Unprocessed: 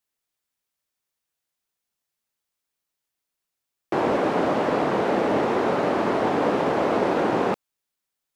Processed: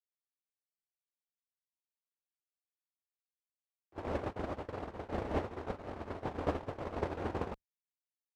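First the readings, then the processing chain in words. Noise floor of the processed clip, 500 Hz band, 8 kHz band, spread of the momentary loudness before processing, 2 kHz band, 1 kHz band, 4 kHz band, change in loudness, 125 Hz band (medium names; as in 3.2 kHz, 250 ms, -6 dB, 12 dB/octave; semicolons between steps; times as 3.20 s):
under -85 dBFS, -17.5 dB, no reading, 3 LU, -18.5 dB, -18.0 dB, -18.5 dB, -17.0 dB, -8.0 dB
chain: octave divider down 2 oct, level +1 dB; gate -17 dBFS, range -43 dB; trim +1 dB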